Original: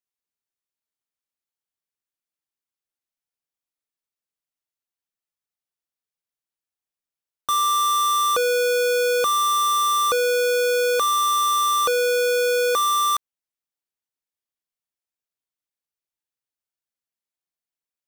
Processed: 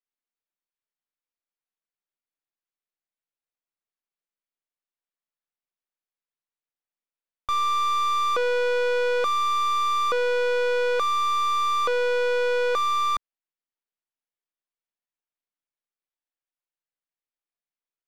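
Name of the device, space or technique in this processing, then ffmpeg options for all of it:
crystal radio: -af "highpass=210,lowpass=3100,aeval=exprs='if(lt(val(0),0),0.447*val(0),val(0))':c=same"

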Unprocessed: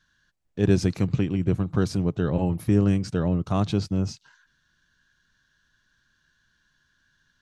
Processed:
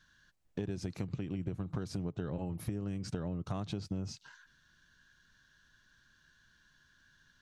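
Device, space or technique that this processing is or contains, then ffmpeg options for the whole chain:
serial compression, peaks first: -af "acompressor=threshold=0.0316:ratio=6,acompressor=threshold=0.0158:ratio=2.5,volume=1.12"

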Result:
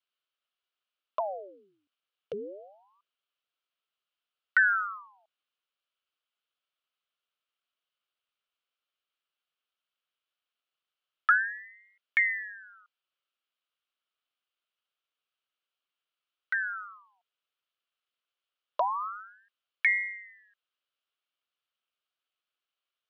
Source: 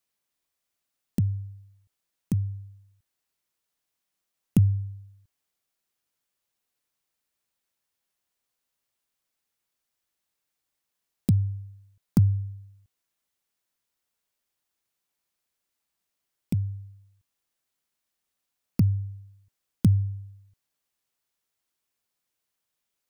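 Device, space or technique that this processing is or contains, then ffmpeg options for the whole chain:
voice changer toy: -af "aeval=exprs='val(0)*sin(2*PI*1100*n/s+1100*0.85/0.25*sin(2*PI*0.25*n/s))':c=same,highpass=550,equalizer=f=870:t=q:w=4:g=-9,equalizer=f=1300:t=q:w=4:g=6,equalizer=f=1900:t=q:w=4:g=-6,equalizer=f=3000:t=q:w=4:g=7,lowpass=f=4000:w=0.5412,lowpass=f=4000:w=1.3066"

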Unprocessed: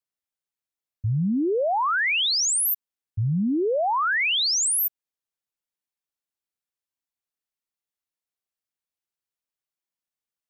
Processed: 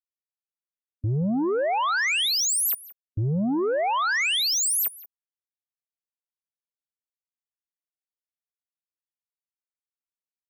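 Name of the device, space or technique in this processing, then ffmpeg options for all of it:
limiter into clipper: -af "alimiter=level_in=1.26:limit=0.0631:level=0:latency=1:release=172,volume=0.794,asoftclip=type=hard:threshold=0.0266,afftdn=nr=33:nf=-45,aecho=1:1:177:0.0944,volume=2.82"

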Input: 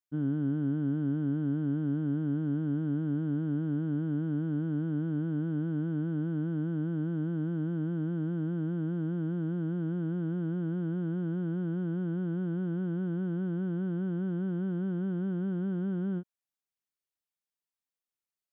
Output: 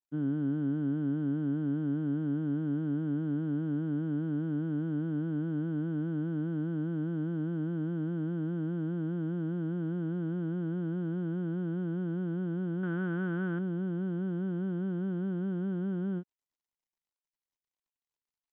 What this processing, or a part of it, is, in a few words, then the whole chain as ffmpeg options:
Bluetooth headset: -filter_complex "[0:a]asettb=1/sr,asplit=3[s0][s1][s2];[s0]atrim=end=12.834[s3];[s1]atrim=start=12.83:end=13.59,asetpts=PTS-STARTPTS,afade=t=in:d=0.004:c=qsin,afade=t=out:st=0.756:d=0.004:c=qsin,equalizer=f=1600:t=o:w=1.8:g=13[s4];[s2]atrim=start=13.586[s5];[s3][s4]acrossfade=d=0.004:c1=hsin:c2=qsin[s6];[s6][s5]acrossfade=d=0.004:c1=qsin:c2=hsin,highpass=140,aresample=8000,aresample=44100" -ar 16000 -c:a sbc -b:a 64k

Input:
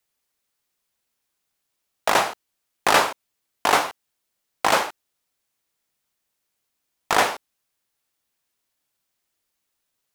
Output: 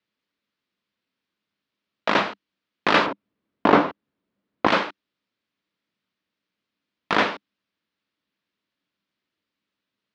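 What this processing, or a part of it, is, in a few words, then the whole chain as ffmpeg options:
guitar cabinet: -filter_complex "[0:a]highpass=83,equalizer=f=200:t=q:w=4:g=10,equalizer=f=290:t=q:w=4:g=7,equalizer=f=780:t=q:w=4:g=-8,lowpass=f=4200:w=0.5412,lowpass=f=4200:w=1.3066,asettb=1/sr,asplit=3[s0][s1][s2];[s0]atrim=end=3.064[s3];[s1]atrim=start=3.06:end=4.67,asetpts=PTS-STARTPTS,afade=t=in:d=0.004:c=qsin,afade=t=out:st=1.606:d=0.004:c=qsin,tiltshelf=f=1500:g=9[s4];[s2]atrim=start=4.666[s5];[s3][s4]acrossfade=d=0.004:c1=hsin:c2=qsin[s6];[s6][s5]acrossfade=d=0.004:c1=qsin:c2=hsin"

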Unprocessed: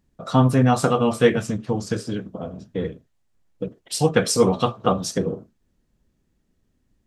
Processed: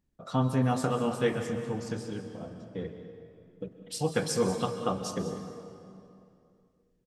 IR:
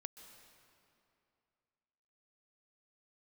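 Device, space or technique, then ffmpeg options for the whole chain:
cave: -filter_complex "[0:a]aecho=1:1:196:0.178[s0];[1:a]atrim=start_sample=2205[s1];[s0][s1]afir=irnorm=-1:irlink=0,volume=0.562"

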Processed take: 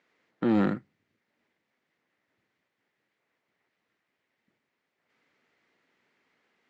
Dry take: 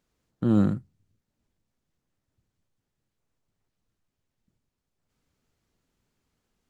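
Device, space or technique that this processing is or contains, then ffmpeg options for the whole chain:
intercom: -af "highpass=320,lowpass=3600,equalizer=f=2000:t=o:w=0.59:g=10,asoftclip=type=tanh:threshold=0.0631,volume=2.24"

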